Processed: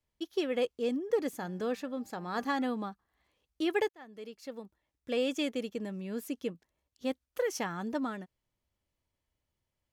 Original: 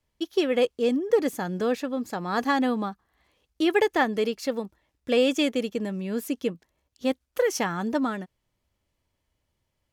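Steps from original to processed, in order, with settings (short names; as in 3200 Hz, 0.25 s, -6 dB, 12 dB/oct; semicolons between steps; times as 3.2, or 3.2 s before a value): 1.31–2.64 de-hum 197.8 Hz, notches 11; 3.89–5.87 fade in equal-power; gain -8 dB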